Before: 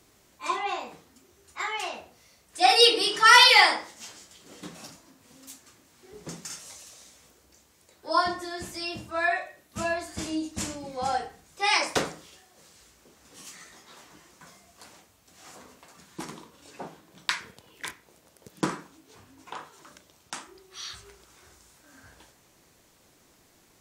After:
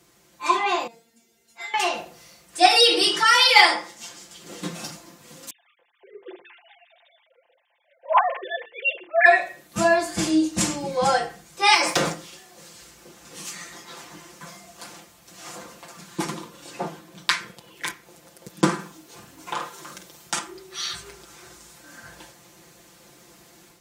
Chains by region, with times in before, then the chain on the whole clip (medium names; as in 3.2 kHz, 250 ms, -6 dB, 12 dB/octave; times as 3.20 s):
0.87–1.74 s: peaking EQ 1.2 kHz -14 dB 0.32 oct + feedback comb 230 Hz, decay 0.18 s, mix 100%
2.66–3.56 s: high-pass 150 Hz + compression 3:1, threshold -19 dBFS
5.50–9.26 s: formants replaced by sine waves + peaking EQ 1.3 kHz -12.5 dB 0.31 oct + hum notches 50/100/150/200/250/300/350/400/450 Hz
11.74–12.14 s: waveshaping leveller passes 1 + compression 4:1, threshold -25 dBFS
18.74–20.39 s: treble shelf 9.3 kHz +8 dB + doubling 48 ms -7.5 dB + loudspeaker Doppler distortion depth 0.14 ms
whole clip: high-pass 54 Hz; comb 5.8 ms, depth 77%; level rider gain up to 7.5 dB